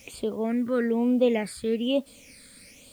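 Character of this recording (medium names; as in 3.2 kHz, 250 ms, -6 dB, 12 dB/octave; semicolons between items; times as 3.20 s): phasing stages 8, 1.1 Hz, lowest notch 800–1900 Hz; a quantiser's noise floor 10-bit, dither triangular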